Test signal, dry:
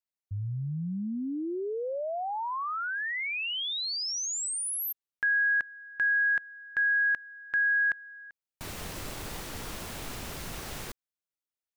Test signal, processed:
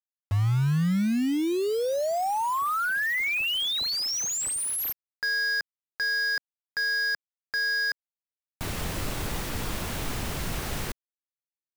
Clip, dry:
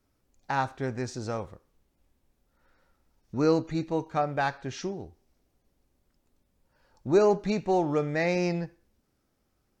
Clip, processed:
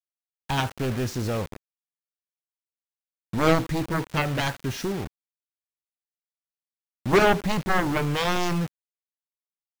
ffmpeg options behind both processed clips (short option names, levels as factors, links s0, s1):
-af "aeval=exprs='0.282*(cos(1*acos(clip(val(0)/0.282,-1,1)))-cos(1*PI/2))+0.00251*(cos(5*acos(clip(val(0)/0.282,-1,1)))-cos(5*PI/2))+0.126*(cos(7*acos(clip(val(0)/0.282,-1,1)))-cos(7*PI/2))':c=same,acrusher=bits=5:mix=0:aa=0.000001,bass=f=250:g=4,treble=f=4000:g=-3"